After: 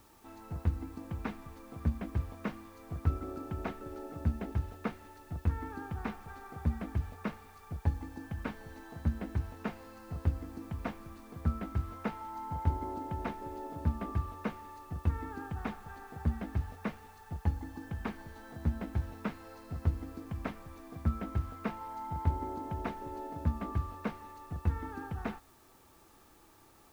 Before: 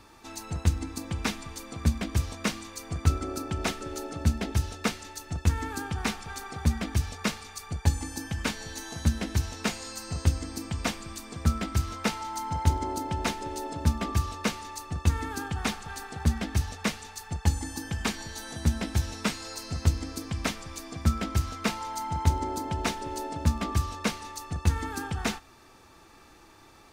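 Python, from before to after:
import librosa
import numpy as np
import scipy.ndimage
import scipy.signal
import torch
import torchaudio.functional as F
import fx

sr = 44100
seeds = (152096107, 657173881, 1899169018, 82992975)

p1 = scipy.signal.sosfilt(scipy.signal.butter(2, 1500.0, 'lowpass', fs=sr, output='sos'), x)
p2 = fx.quant_dither(p1, sr, seeds[0], bits=8, dither='triangular')
p3 = p1 + (p2 * 10.0 ** (-9.0 / 20.0))
y = p3 * 10.0 ** (-9.0 / 20.0)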